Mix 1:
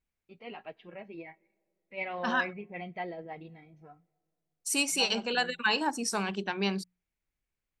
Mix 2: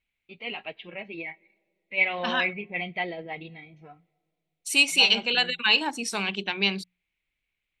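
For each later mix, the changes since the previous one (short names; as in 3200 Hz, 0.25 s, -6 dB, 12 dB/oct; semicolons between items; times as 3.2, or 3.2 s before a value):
first voice +4.5 dB; master: add band shelf 2900 Hz +11 dB 1.2 oct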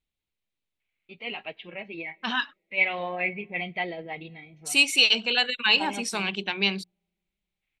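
first voice: entry +0.80 s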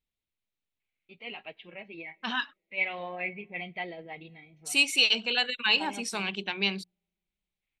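first voice -6.0 dB; second voice -3.5 dB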